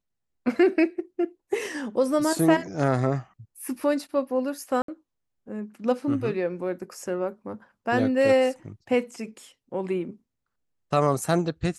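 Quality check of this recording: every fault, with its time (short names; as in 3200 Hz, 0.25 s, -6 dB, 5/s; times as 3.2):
4.82–4.88 gap 63 ms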